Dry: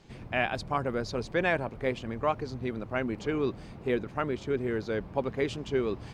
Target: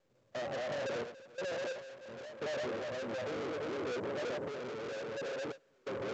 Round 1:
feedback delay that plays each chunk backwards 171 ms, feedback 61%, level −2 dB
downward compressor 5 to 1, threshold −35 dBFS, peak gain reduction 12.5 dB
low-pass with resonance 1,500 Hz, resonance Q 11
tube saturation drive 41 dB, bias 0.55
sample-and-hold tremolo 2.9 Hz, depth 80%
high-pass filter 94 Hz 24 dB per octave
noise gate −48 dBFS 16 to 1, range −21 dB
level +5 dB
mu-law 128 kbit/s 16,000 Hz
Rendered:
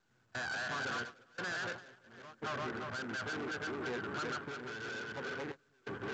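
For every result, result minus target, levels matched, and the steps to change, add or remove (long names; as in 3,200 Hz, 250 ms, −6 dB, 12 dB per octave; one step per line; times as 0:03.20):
2,000 Hz band +7.0 dB; downward compressor: peak gain reduction +5 dB
change: low-pass with resonance 550 Hz, resonance Q 11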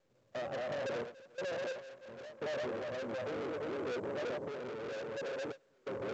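downward compressor: peak gain reduction +5 dB
change: downward compressor 5 to 1, threshold −29 dBFS, peak gain reduction 8 dB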